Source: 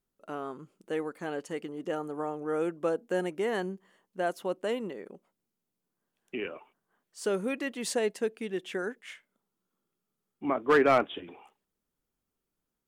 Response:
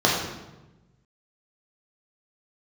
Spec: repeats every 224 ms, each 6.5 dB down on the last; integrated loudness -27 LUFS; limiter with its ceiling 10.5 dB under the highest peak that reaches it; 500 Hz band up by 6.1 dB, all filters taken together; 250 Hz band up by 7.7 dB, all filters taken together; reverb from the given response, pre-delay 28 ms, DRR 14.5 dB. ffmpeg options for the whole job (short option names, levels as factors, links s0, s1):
-filter_complex "[0:a]equalizer=f=250:t=o:g=8,equalizer=f=500:t=o:g=5,alimiter=limit=0.119:level=0:latency=1,aecho=1:1:224|448|672|896|1120|1344:0.473|0.222|0.105|0.0491|0.0231|0.0109,asplit=2[s0][s1];[1:a]atrim=start_sample=2205,adelay=28[s2];[s1][s2]afir=irnorm=-1:irlink=0,volume=0.0211[s3];[s0][s3]amix=inputs=2:normalize=0,volume=1.26"